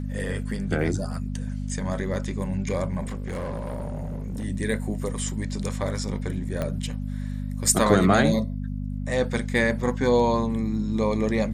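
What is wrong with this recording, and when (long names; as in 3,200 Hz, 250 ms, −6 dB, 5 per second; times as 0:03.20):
mains hum 50 Hz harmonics 5 −30 dBFS
0:03.03–0:04.45: clipping −27 dBFS
0:06.62: click −15 dBFS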